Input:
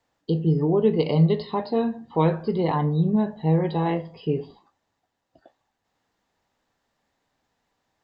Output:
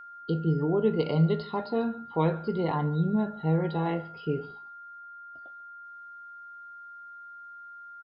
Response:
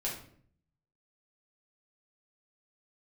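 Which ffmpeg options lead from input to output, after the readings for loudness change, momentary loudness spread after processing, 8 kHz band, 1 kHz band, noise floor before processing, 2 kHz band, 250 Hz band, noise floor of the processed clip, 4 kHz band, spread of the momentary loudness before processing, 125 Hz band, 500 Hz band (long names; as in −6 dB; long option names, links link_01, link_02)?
−5.0 dB, 19 LU, can't be measured, −3.5 dB, −78 dBFS, 0.0 dB, −5.0 dB, −46 dBFS, −5.0 dB, 8 LU, −5.0 dB, −5.0 dB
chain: -af "aeval=exprs='val(0)+0.0126*sin(2*PI*1400*n/s)':channel_layout=same,aecho=1:1:143:0.0794,volume=-5dB"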